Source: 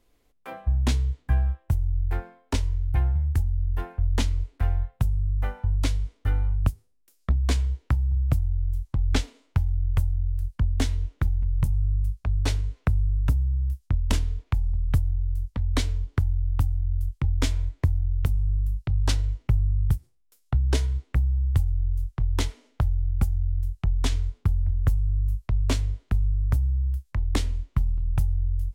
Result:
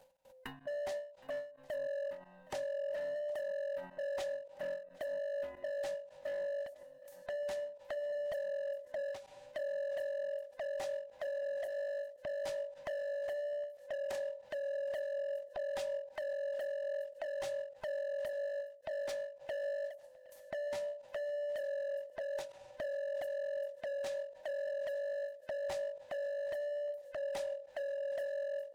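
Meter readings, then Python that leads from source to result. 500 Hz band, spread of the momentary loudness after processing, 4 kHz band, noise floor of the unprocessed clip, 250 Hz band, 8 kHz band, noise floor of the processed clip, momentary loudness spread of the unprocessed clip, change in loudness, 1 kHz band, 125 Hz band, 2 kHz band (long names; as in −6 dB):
+9.0 dB, 5 LU, −15.0 dB, −65 dBFS, below −25 dB, −16.5 dB, −59 dBFS, 4 LU, −13.0 dB, −10.5 dB, below −40 dB, −6.0 dB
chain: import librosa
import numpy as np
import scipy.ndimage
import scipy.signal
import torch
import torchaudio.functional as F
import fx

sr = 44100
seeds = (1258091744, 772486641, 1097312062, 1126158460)

y = fx.band_swap(x, sr, width_hz=500)
y = np.clip(y, -10.0 ** (-21.5 / 20.0), 10.0 ** (-21.5 / 20.0))
y = fx.level_steps(y, sr, step_db=22)
y = fx.echo_swing(y, sr, ms=1278, ratio=1.5, feedback_pct=74, wet_db=-23.0)
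y = fx.end_taper(y, sr, db_per_s=120.0)
y = y * librosa.db_to_amplitude(6.0)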